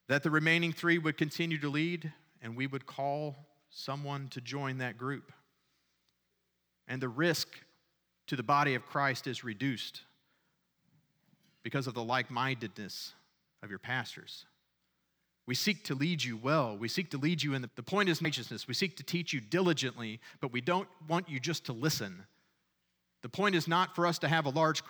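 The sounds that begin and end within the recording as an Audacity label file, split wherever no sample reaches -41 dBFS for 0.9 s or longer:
6.890000	9.980000	sound
11.660000	14.390000	sound
15.480000	22.140000	sound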